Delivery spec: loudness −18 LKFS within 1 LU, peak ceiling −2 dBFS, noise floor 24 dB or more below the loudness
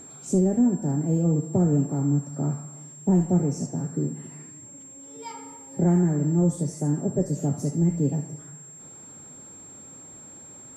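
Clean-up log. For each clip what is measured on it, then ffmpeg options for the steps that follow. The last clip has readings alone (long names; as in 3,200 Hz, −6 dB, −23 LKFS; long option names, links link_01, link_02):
interfering tone 7,500 Hz; level of the tone −43 dBFS; integrated loudness −24.5 LKFS; sample peak −12.0 dBFS; target loudness −18.0 LKFS
→ -af "bandreject=frequency=7500:width=30"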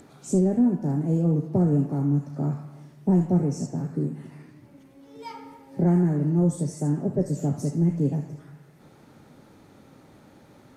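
interfering tone none found; integrated loudness −24.5 LKFS; sample peak −12.0 dBFS; target loudness −18.0 LKFS
→ -af "volume=6.5dB"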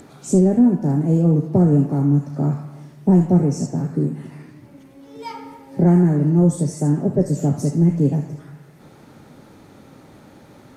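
integrated loudness −18.0 LKFS; sample peak −5.5 dBFS; background noise floor −47 dBFS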